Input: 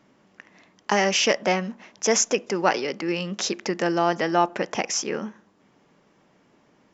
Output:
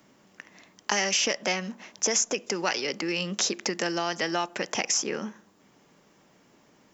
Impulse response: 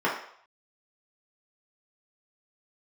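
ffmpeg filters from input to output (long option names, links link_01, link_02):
-filter_complex "[0:a]aemphasis=mode=production:type=50fm,acrossover=split=120|1700[link_01][link_02][link_03];[link_01]acompressor=threshold=-59dB:ratio=4[link_04];[link_02]acompressor=threshold=-28dB:ratio=4[link_05];[link_03]acompressor=threshold=-24dB:ratio=4[link_06];[link_04][link_05][link_06]amix=inputs=3:normalize=0"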